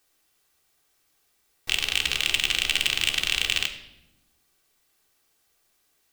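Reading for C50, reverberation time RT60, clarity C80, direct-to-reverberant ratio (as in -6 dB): 10.0 dB, 0.90 s, 12.0 dB, 2.5 dB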